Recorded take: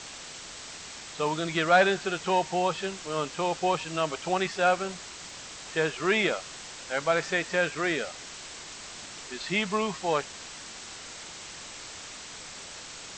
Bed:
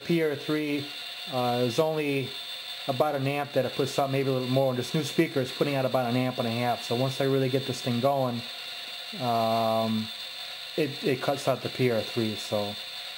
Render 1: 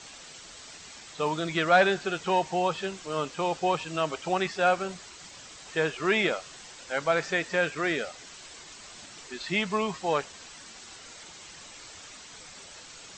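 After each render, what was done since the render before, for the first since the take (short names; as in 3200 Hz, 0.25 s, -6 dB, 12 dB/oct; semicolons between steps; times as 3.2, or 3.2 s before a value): denoiser 7 dB, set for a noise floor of -43 dBFS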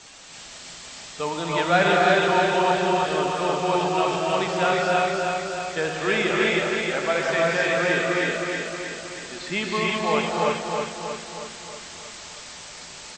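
on a send: feedback echo 0.316 s, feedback 57%, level -4 dB; on the sum: non-linear reverb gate 0.38 s rising, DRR -2.5 dB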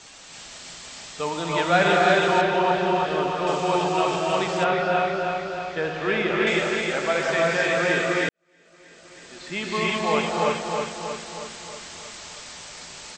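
2.41–3.47 air absorption 130 m; 4.64–6.47 air absorption 180 m; 8.29–9.84 fade in quadratic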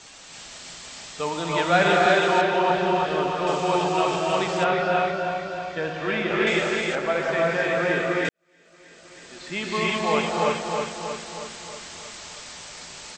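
2.06–2.7 HPF 170 Hz; 5.11–6.31 notch comb 420 Hz; 6.95–8.25 high shelf 3600 Hz -11.5 dB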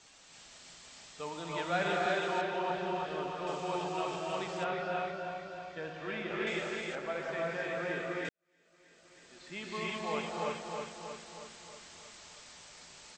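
gain -13 dB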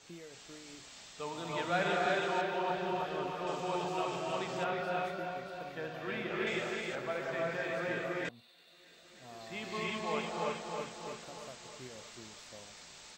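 add bed -25 dB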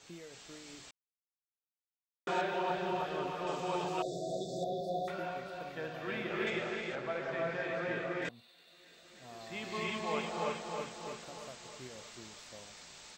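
0.91–2.27 mute; 4.02–5.08 brick-wall FIR band-stop 760–3400 Hz; 6.5–8.22 air absorption 91 m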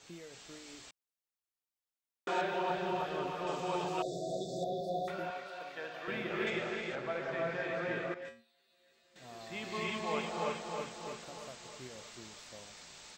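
0.58–2.41 bell 160 Hz -13.5 dB 0.28 oct; 5.3–6.08 weighting filter A; 8.14–9.16 resonator 77 Hz, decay 0.33 s, harmonics odd, mix 90%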